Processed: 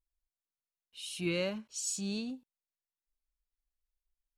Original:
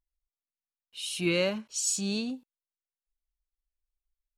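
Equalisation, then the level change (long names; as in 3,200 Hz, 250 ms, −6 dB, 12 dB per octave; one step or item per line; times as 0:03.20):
low-shelf EQ 160 Hz +6 dB
−7.0 dB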